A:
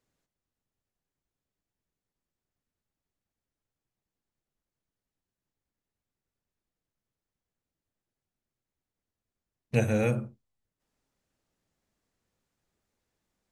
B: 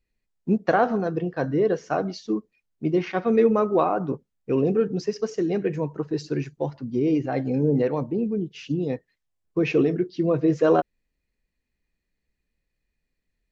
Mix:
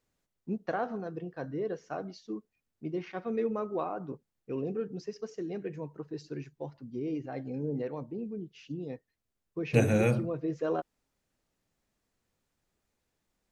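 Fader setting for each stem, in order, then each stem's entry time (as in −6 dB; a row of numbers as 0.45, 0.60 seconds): +0.5, −12.5 decibels; 0.00, 0.00 seconds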